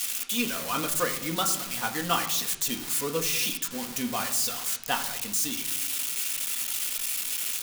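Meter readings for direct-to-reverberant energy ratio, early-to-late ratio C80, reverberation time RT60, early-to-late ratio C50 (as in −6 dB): 3.0 dB, 13.0 dB, 0.95 s, 10.5 dB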